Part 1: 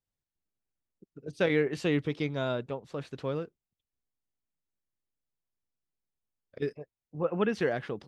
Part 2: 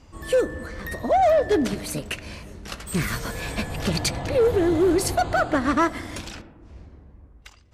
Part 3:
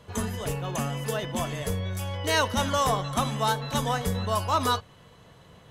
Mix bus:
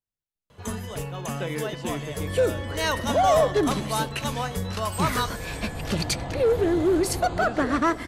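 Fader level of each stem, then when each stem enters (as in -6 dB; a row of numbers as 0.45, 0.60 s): -5.5, -2.0, -2.0 dB; 0.00, 2.05, 0.50 s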